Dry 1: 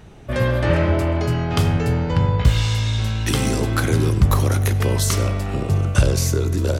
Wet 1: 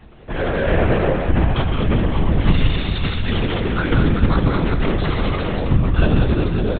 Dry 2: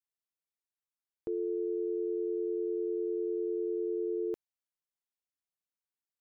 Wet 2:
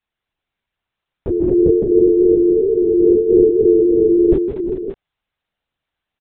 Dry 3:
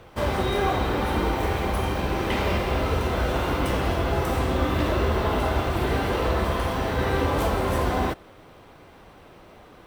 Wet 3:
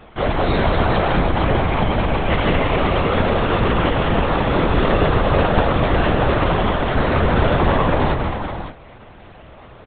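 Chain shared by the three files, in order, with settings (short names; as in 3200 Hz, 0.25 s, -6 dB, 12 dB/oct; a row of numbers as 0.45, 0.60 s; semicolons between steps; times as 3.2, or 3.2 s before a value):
chorus 0.37 Hz, delay 18.5 ms, depth 7.8 ms; on a send: tapped delay 0.149/0.168/0.225/0.323/0.395/0.563 s -8/-11.5/-5.5/-18.5/-9.5/-9 dB; on the sum: LPC vocoder at 8 kHz whisper; normalise peaks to -2 dBFS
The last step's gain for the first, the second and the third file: +2.0, +20.0, +8.0 dB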